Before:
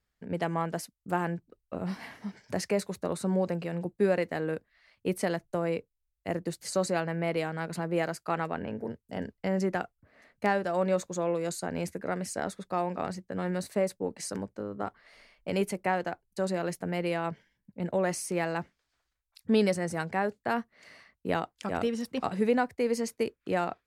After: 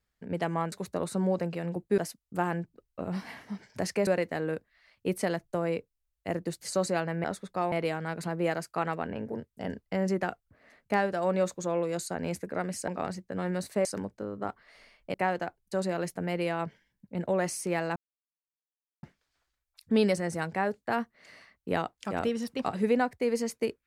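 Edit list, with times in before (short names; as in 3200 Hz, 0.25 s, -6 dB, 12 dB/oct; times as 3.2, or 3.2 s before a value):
2.81–4.07 move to 0.72
12.4–12.88 move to 7.24
13.85–14.23 cut
15.52–15.79 cut
18.61 insert silence 1.07 s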